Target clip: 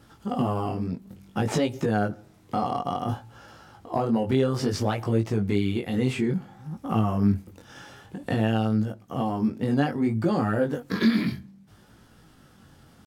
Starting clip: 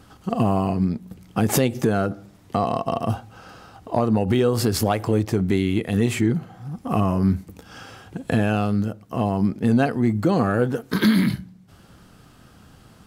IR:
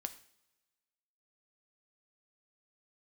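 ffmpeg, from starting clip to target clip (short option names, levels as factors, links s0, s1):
-filter_complex "[0:a]asetrate=46722,aresample=44100,atempo=0.943874,flanger=delay=18:depth=4.9:speed=0.58,acrossover=split=7200[s0][s1];[s1]acompressor=threshold=0.002:ratio=4:attack=1:release=60[s2];[s0][s2]amix=inputs=2:normalize=0,volume=0.841"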